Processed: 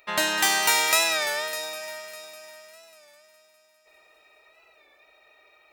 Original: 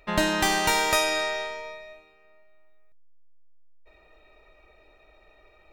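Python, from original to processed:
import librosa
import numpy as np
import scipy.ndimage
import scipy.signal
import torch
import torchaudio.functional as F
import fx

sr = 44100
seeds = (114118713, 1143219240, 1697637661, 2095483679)

y = fx.highpass(x, sr, hz=1100.0, slope=6)
y = fx.high_shelf(y, sr, hz=9400.0, db=7.5)
y = fx.echo_heads(y, sr, ms=201, heads='first and third', feedback_pct=51, wet_db=-13.5)
y = fx.record_warp(y, sr, rpm=33.33, depth_cents=100.0)
y = y * librosa.db_to_amplitude(3.0)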